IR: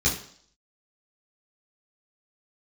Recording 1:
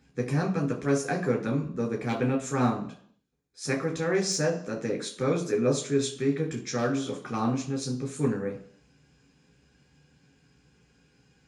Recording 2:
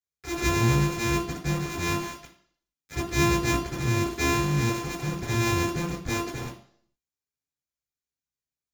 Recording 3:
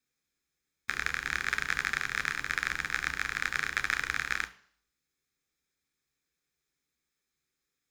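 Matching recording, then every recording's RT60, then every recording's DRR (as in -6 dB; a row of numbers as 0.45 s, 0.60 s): 2; 0.55 s, 0.55 s, 0.55 s; 0.0 dB, -7.0 dB, 9.5 dB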